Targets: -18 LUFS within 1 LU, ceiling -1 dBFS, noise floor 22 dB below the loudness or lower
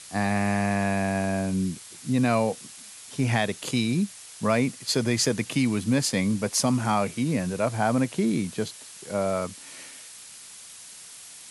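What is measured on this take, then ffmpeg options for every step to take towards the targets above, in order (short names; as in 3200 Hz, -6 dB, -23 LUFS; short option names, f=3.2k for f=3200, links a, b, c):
noise floor -45 dBFS; noise floor target -48 dBFS; loudness -26.0 LUFS; peak -10.0 dBFS; loudness target -18.0 LUFS
-> -af "afftdn=nr=6:nf=-45"
-af "volume=8dB"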